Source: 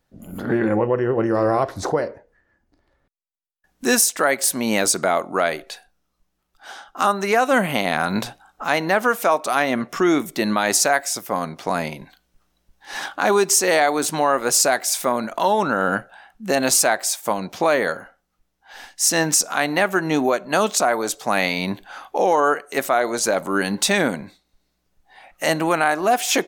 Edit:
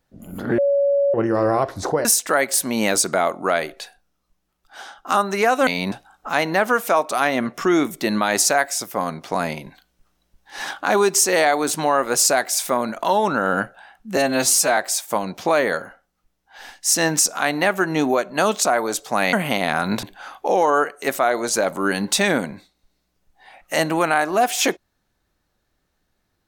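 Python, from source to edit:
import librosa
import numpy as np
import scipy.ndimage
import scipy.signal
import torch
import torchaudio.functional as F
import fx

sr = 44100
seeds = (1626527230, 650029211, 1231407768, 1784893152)

y = fx.edit(x, sr, fx.bleep(start_s=0.58, length_s=0.56, hz=563.0, db=-14.5),
    fx.cut(start_s=2.05, length_s=1.9),
    fx.swap(start_s=7.57, length_s=0.7, other_s=21.48, other_length_s=0.25),
    fx.stretch_span(start_s=16.52, length_s=0.4, factor=1.5), tone=tone)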